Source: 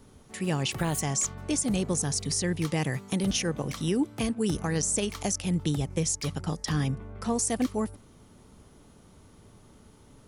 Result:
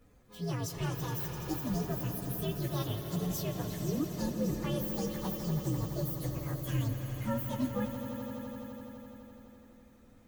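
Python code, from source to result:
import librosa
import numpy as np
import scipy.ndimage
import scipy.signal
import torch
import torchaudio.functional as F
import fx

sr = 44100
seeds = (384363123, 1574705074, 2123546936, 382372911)

y = fx.partial_stretch(x, sr, pct=128)
y = fx.echo_swell(y, sr, ms=84, loudest=5, wet_db=-12.5)
y = y * librosa.db_to_amplitude(-4.5)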